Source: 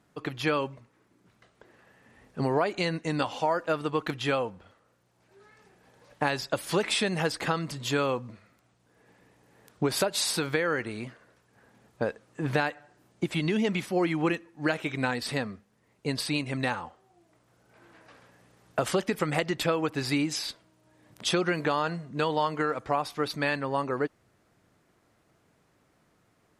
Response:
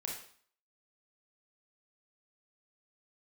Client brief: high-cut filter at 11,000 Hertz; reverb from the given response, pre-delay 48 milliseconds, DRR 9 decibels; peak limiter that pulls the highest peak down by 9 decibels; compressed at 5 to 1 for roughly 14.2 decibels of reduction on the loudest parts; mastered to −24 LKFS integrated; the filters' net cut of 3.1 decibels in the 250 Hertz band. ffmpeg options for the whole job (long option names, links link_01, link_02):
-filter_complex "[0:a]lowpass=11000,equalizer=frequency=250:width_type=o:gain=-4.5,acompressor=threshold=-39dB:ratio=5,alimiter=level_in=7dB:limit=-24dB:level=0:latency=1,volume=-7dB,asplit=2[link_01][link_02];[1:a]atrim=start_sample=2205,adelay=48[link_03];[link_02][link_03]afir=irnorm=-1:irlink=0,volume=-9dB[link_04];[link_01][link_04]amix=inputs=2:normalize=0,volume=19dB"